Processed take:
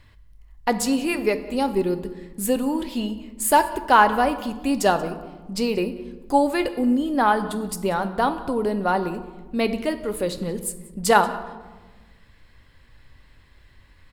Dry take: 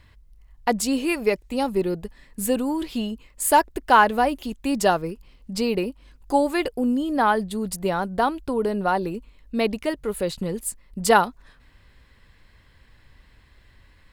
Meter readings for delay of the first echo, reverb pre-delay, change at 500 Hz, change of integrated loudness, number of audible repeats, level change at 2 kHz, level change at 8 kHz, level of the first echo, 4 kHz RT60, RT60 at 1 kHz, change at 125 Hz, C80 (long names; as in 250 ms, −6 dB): 183 ms, 4 ms, +0.5 dB, +0.5 dB, 1, +0.5 dB, 0.0 dB, −22.0 dB, 0.65 s, 1.2 s, +0.5 dB, 13.5 dB